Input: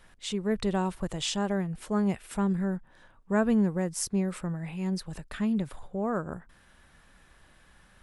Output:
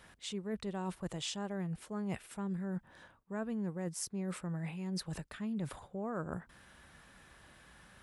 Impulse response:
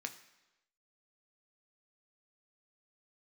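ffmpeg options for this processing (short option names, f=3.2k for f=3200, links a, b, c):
-af "highpass=58,areverse,acompressor=threshold=-37dB:ratio=6,areverse,volume=1dB"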